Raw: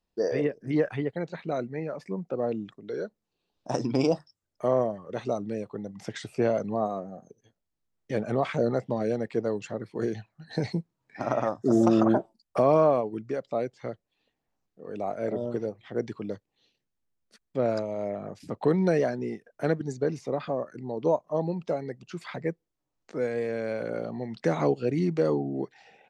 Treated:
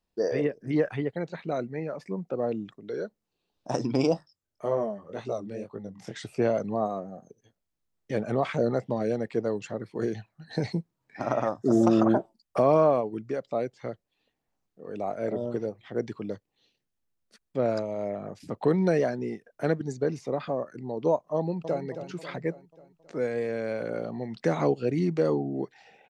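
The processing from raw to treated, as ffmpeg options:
ffmpeg -i in.wav -filter_complex "[0:a]asplit=3[link_01][link_02][link_03];[link_01]afade=type=out:start_time=4.14:duration=0.02[link_04];[link_02]flanger=delay=17.5:depth=7.7:speed=1.9,afade=type=in:start_time=4.14:duration=0.02,afade=type=out:start_time=6.17:duration=0.02[link_05];[link_03]afade=type=in:start_time=6.17:duration=0.02[link_06];[link_04][link_05][link_06]amix=inputs=3:normalize=0,asplit=2[link_07][link_08];[link_08]afade=type=in:start_time=21.37:duration=0.01,afade=type=out:start_time=21.84:duration=0.01,aecho=0:1:270|540|810|1080|1350|1620:0.316228|0.173925|0.0956589|0.0526124|0.0289368|0.0159152[link_09];[link_07][link_09]amix=inputs=2:normalize=0" out.wav

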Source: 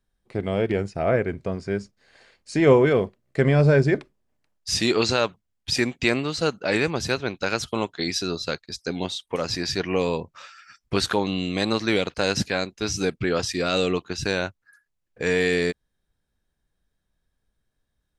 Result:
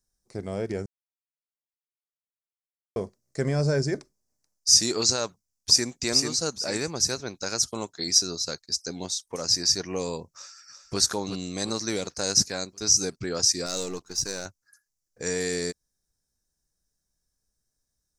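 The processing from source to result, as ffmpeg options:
ffmpeg -i in.wav -filter_complex "[0:a]asplit=2[link_01][link_02];[link_02]afade=type=in:start_time=5.25:duration=0.01,afade=type=out:start_time=6:duration=0.01,aecho=0:1:440|880|1320|1760:0.668344|0.200503|0.060151|0.0180453[link_03];[link_01][link_03]amix=inputs=2:normalize=0,asplit=2[link_04][link_05];[link_05]afade=type=in:start_time=10.33:duration=0.01,afade=type=out:start_time=10.99:duration=0.01,aecho=0:1:360|720|1080|1440|1800|2160:0.354813|0.195147|0.107331|0.0590321|0.0324676|0.0178572[link_06];[link_04][link_06]amix=inputs=2:normalize=0,asettb=1/sr,asplit=3[link_07][link_08][link_09];[link_07]atrim=end=13.664[link_10];[link_08]atrim=start=13.66:end=14.46,asetpts=PTS-STARTPTS,afade=type=in:duration=0.004:curve=qsin,afade=type=out:start_time=0.796:duration=0.004:curve=qsin,aeval=exprs='if(lt(val(0),0),0.447*val(0),val(0))':channel_layout=same[link_11];[link_09]atrim=start=14.456[link_12];[link_10][link_11]acrossfade=duration=0.004:curve1=hsin:curve2=qsin[link_13];[link_13][link_12]acrossfade=duration=0.004:curve1=qsin:curve2=hsin,asplit=3[link_14][link_15][link_16];[link_14]atrim=end=0.86,asetpts=PTS-STARTPTS,afade=type=out:start_time=0.856:duration=0.004:curve=hsin[link_17];[link_15]atrim=start=0.86:end=2.96,asetpts=PTS-STARTPTS,volume=0[link_18];[link_16]atrim=start=2.96,asetpts=PTS-STARTPTS,afade=type=in:duration=0.004:curve=hsin[link_19];[link_17][link_18][link_19]concat=n=3:v=0:a=1,highshelf=frequency=4200:width_type=q:width=3:gain=11.5,volume=-7dB" out.wav

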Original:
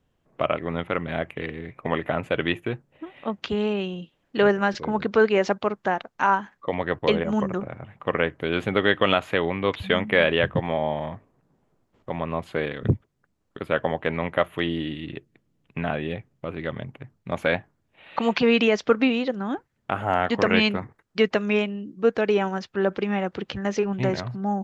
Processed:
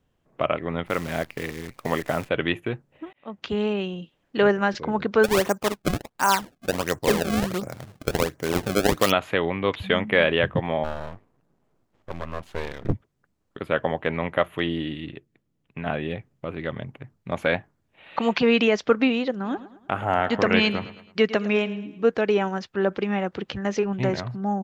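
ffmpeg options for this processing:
ffmpeg -i in.wav -filter_complex "[0:a]asettb=1/sr,asplit=3[link_01][link_02][link_03];[link_01]atrim=end=0.864[link_04];[link_02]atrim=start=0.86:end=2.29,asetpts=PTS-STARTPTS,afade=type=in:duration=0.004:curve=qsin,afade=type=out:start_time=1.426:duration=0.004:curve=qsin,acrusher=bits=7:dc=4:mix=0:aa=0.000001[link_05];[link_03]atrim=start=2.286[link_06];[link_04][link_05]acrossfade=duration=0.004:curve1=hsin:curve2=qsin[link_07];[link_07][link_06]acrossfade=duration=0.004:curve1=qsin:curve2=hsin,asplit=3[link_08][link_09][link_10];[link_08]afade=type=out:start_time=5.23:duration=0.02[link_11];[link_09]acrusher=samples=27:mix=1:aa=0.000001:lfo=1:lforange=43.2:lforate=1.4,afade=type=in:start_time=5.23:duration=0.02,afade=type=out:start_time=9.1:duration=0.02[link_12];[link_10]afade=type=in:start_time=9.1:duration=0.02[link_13];[link_11][link_12][link_13]amix=inputs=3:normalize=0,asplit=3[link_14][link_15][link_16];[link_14]afade=type=out:start_time=10.83:duration=0.02[link_17];[link_15]aeval=exprs='max(val(0),0)':channel_layout=same,afade=type=in:start_time=10.83:duration=0.02,afade=type=out:start_time=12.92:duration=0.02[link_18];[link_16]afade=type=in:start_time=12.92:duration=0.02[link_19];[link_17][link_18][link_19]amix=inputs=3:normalize=0,asplit=3[link_20][link_21][link_22];[link_20]afade=type=out:start_time=19.43:duration=0.02[link_23];[link_21]aecho=1:1:108|216|324|432:0.168|0.0755|0.034|0.0153,afade=type=in:start_time=19.43:duration=0.02,afade=type=out:start_time=22.12:duration=0.02[link_24];[link_22]afade=type=in:start_time=22.12:duration=0.02[link_25];[link_23][link_24][link_25]amix=inputs=3:normalize=0,asplit=4[link_26][link_27][link_28][link_29];[link_26]atrim=end=3.13,asetpts=PTS-STARTPTS,afade=type=out:start_time=3.126:duration=0.004:curve=hsin[link_30];[link_27]atrim=start=3.13:end=15.102,asetpts=PTS-STARTPTS,afade=type=in:duration=0.43[link_31];[link_28]atrim=start=15.098:end=15.862,asetpts=PTS-STARTPTS,volume=-4.5dB[link_32];[link_29]atrim=start=15.858[link_33];[link_30][link_31]concat=n=2:v=0:a=1[link_34];[link_34][link_32]acrossfade=duration=0.004:curve1=hsin:curve2=hsin[link_35];[link_35][link_33]acrossfade=duration=0.004:curve1=hsin:curve2=hsin" out.wav

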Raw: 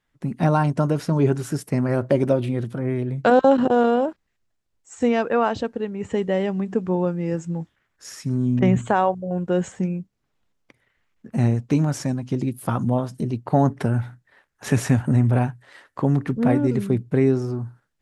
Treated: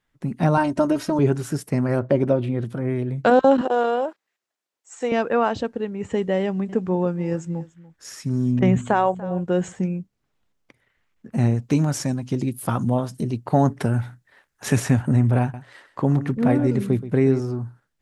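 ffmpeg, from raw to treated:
ffmpeg -i in.wav -filter_complex "[0:a]asettb=1/sr,asplit=3[link_01][link_02][link_03];[link_01]atrim=end=0.574[link_04];[link_02]atrim=start=0.57:end=1.19,asetpts=PTS-STARTPTS,afade=type=in:duration=0.004:curve=qsin,afade=type=out:start_time=0.616:duration=0.004:curve=qsin,aecho=1:1:3.2:0.86,atrim=end_sample=27342[link_05];[link_03]atrim=start=1.186[link_06];[link_04][link_05]acrossfade=duration=0.004:curve1=hsin:curve2=qsin[link_07];[link_07][link_06]acrossfade=duration=0.004:curve1=qsin:curve2=hsin,asettb=1/sr,asplit=3[link_08][link_09][link_10];[link_08]atrim=end=1.994[link_11];[link_09]atrim=start=1.99:end=2.63,asetpts=PTS-STARTPTS,afade=type=in:duration=0.004:curve=qsin,afade=type=out:start_time=0.636:duration=0.004:curve=qsin,lowpass=frequency=2700:poles=1[link_12];[link_10]atrim=start=2.626[link_13];[link_11][link_12]acrossfade=duration=0.004:curve1=hsin:curve2=qsin[link_14];[link_14][link_13]acrossfade=duration=0.004:curve1=qsin:curve2=hsin,asettb=1/sr,asplit=3[link_15][link_16][link_17];[link_15]atrim=end=3.614[link_18];[link_16]atrim=start=3.61:end=5.12,asetpts=PTS-STARTPTS,afade=type=in:duration=0.004:curve=qsin,afade=type=out:start_time=1.506:duration=0.004:curve=qsin,highpass=450[link_19];[link_17]atrim=start=5.116[link_20];[link_18][link_19]acrossfade=duration=0.004:curve1=hsin:curve2=qsin[link_21];[link_21][link_20]acrossfade=duration=0.004:curve1=qsin:curve2=hsin,asettb=1/sr,asplit=3[link_22][link_23][link_24];[link_22]atrim=end=6.404[link_25];[link_23]atrim=start=6.4:end=9.73,asetpts=PTS-STARTPTS,afade=type=in:duration=0.004:curve=qsin,afade=type=out:start_time=3.326:duration=0.004:curve=qsin,aecho=1:1:290:0.106,atrim=end_sample=146853[link_26];[link_24]atrim=start=9.726[link_27];[link_25][link_26]acrossfade=duration=0.004:curve1=hsin:curve2=qsin[link_28];[link_28][link_27]acrossfade=duration=0.004:curve1=qsin:curve2=hsin,asettb=1/sr,asplit=3[link_29][link_30][link_31];[link_29]atrim=end=11.624[link_32];[link_30]atrim=start=11.62:end=14.8,asetpts=PTS-STARTPTS,afade=type=in:duration=0.004:curve=qsin,afade=type=out:start_time=3.176:duration=0.004:curve=qsin,highshelf=frequency=3700:gain=5.5[link_33];[link_31]atrim=start=14.796[link_34];[link_32][link_33]acrossfade=duration=0.004:curve1=hsin:curve2=qsin[link_35];[link_35][link_34]acrossfade=duration=0.004:curve1=qsin:curve2=hsin,asettb=1/sr,asplit=3[link_36][link_37][link_38];[link_36]atrim=end=15.414[link_39];[link_37]atrim=start=15.41:end=17.4,asetpts=PTS-STARTPTS,afade=type=in:duration=0.004:curve=qsin,afade=type=out:start_time=1.986:duration=0.004:curve=qsin,aecho=1:1:127:0.2,atrim=end_sample=87759[link_40];[link_38]atrim=start=17.396[link_41];[link_39][link_40]acrossfade=duration=0.004:curve1=hsin:curve2=qsin[link_42];[link_42][link_41]acrossfade=duration=0.004:curve1=qsin:curve2=hsin" out.wav

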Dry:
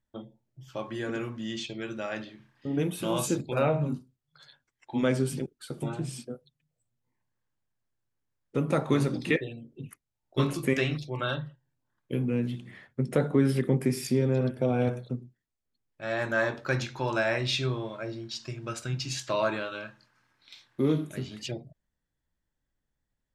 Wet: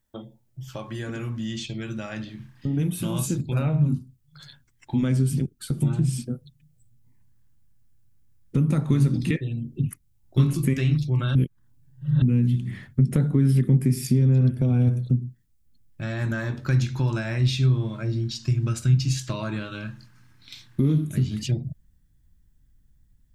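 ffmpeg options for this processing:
ffmpeg -i in.wav -filter_complex "[0:a]asettb=1/sr,asplit=3[link_01][link_02][link_03];[link_01]atrim=end=14.784[link_04];[link_02]atrim=start=14.78:end=15.22,asetpts=PTS-STARTPTS,afade=type=in:duration=0.004:curve=qsin,afade=type=out:start_time=0.436:duration=0.004:curve=qsin,equalizer=frequency=1900:width_type=o:width=2.2:gain=-4.5[link_05];[link_03]atrim=start=15.216[link_06];[link_04][link_05]acrossfade=duration=0.004:curve1=hsin:curve2=qsin[link_07];[link_07][link_06]acrossfade=duration=0.004:curve1=qsin:curve2=hsin,asplit=3[link_08][link_09][link_10];[link_08]atrim=end=11.352[link_11];[link_09]atrim=start=11.348:end=12.222,asetpts=PTS-STARTPTS,areverse[link_12];[link_10]atrim=start=12.218[link_13];[link_11][link_12]acrossfade=duration=0.004:curve1=hsin:curve2=hsin[link_14];[link_14][link_13]acrossfade=duration=0.004:curve1=hsin:curve2=hsin,highshelf=frequency=7300:gain=10.5,acompressor=threshold=-41dB:ratio=2,asubboost=boost=9.5:cutoff=180,volume=5.5dB" out.wav

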